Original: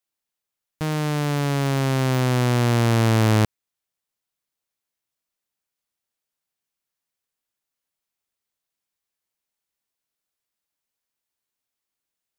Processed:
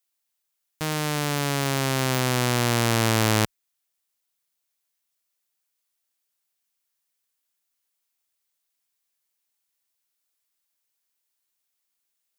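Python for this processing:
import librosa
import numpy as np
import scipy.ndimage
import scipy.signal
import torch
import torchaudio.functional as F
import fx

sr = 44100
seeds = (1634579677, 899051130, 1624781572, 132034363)

y = fx.tilt_eq(x, sr, slope=2.0)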